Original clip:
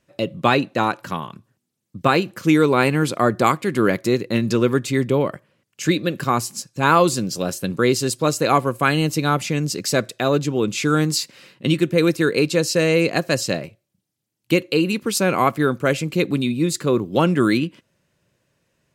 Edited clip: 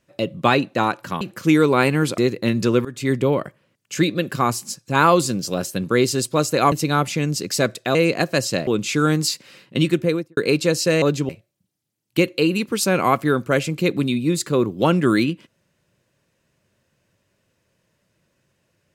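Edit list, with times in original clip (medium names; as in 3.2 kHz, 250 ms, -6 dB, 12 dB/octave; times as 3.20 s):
1.21–2.21 s: delete
3.18–4.06 s: delete
4.73–4.99 s: fade in, from -20.5 dB
8.60–9.06 s: delete
10.29–10.56 s: swap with 12.91–13.63 s
11.85–12.26 s: studio fade out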